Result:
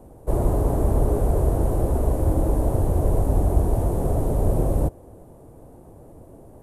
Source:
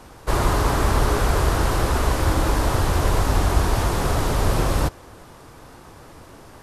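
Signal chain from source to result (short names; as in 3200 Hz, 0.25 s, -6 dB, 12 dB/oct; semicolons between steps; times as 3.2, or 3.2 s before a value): EQ curve 650 Hz 0 dB, 1300 Hz -20 dB, 5100 Hz -26 dB, 9500 Hz -7 dB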